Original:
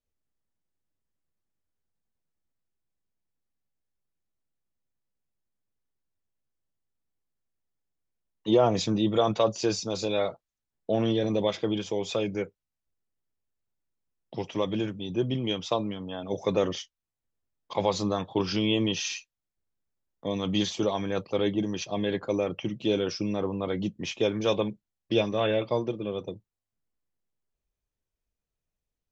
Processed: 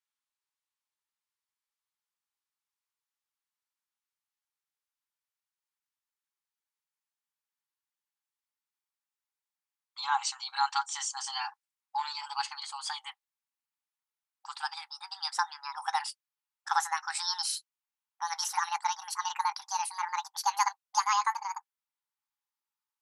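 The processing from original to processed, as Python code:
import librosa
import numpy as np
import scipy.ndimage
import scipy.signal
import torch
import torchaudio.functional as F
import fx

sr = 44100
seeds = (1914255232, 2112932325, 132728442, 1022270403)

y = fx.speed_glide(x, sr, from_pct=53, to_pct=200)
y = fx.brickwall_highpass(y, sr, low_hz=780.0)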